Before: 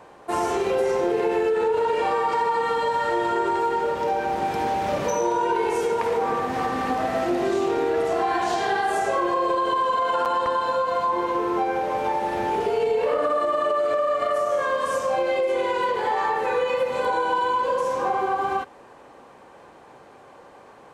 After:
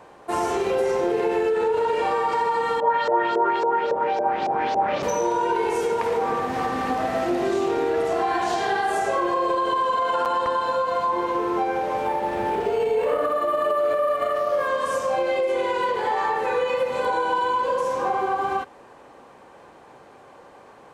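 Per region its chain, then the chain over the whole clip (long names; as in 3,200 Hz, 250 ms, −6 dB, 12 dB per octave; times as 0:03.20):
0:02.80–0:05.03: high-pass filter 230 Hz 6 dB per octave + auto-filter low-pass saw up 3.6 Hz 500–6,200 Hz
0:12.04–0:14.68: flutter between parallel walls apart 10.2 metres, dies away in 0.28 s + linearly interpolated sample-rate reduction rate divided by 4×
whole clip: no processing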